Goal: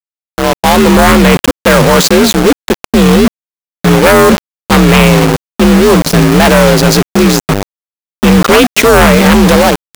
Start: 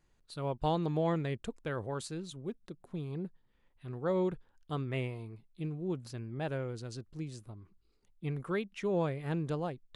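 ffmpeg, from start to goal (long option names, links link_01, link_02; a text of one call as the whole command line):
ffmpeg -i in.wav -af "highpass=76,highshelf=frequency=2900:gain=-7.5,aecho=1:1:262|524:0.0668|0.0147,dynaudnorm=framelen=210:gausssize=9:maxgain=13dB,afreqshift=47,aresample=16000,aeval=exprs='0.15*(abs(mod(val(0)/0.15+3,4)-2)-1)':channel_layout=same,aresample=44100,highshelf=frequency=5900:gain=10,aeval=exprs='val(0)*gte(abs(val(0)),0.0237)':channel_layout=same,apsyclip=29dB,volume=-1.5dB" out.wav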